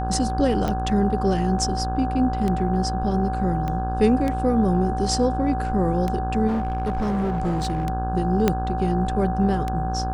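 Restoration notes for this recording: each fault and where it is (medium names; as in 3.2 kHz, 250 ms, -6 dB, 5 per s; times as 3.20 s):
buzz 60 Hz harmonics 28 -27 dBFS
tick 33 1/3 rpm -13 dBFS
whine 760 Hz -27 dBFS
3.68 s: pop -16 dBFS
6.47–7.85 s: clipped -20 dBFS
8.48 s: pop -5 dBFS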